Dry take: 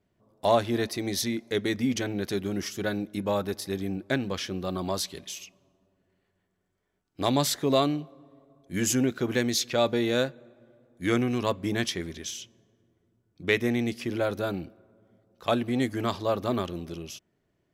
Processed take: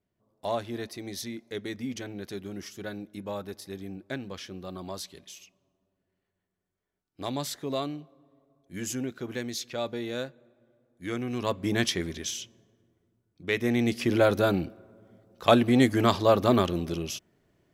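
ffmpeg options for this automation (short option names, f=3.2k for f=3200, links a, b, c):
-af "volume=14dB,afade=t=in:st=11.18:d=0.67:silence=0.298538,afade=t=out:st=12.36:d=1.11:silence=0.398107,afade=t=in:st=13.47:d=0.65:silence=0.266073"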